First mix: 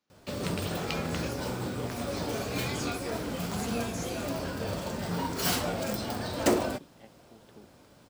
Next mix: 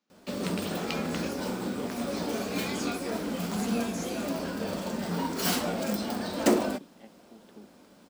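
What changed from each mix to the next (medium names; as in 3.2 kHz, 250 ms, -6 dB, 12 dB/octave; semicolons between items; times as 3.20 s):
master: add resonant low shelf 160 Hz -7 dB, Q 3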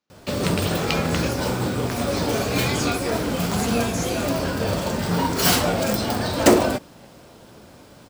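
background +10.0 dB; master: add resonant low shelf 160 Hz +7 dB, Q 3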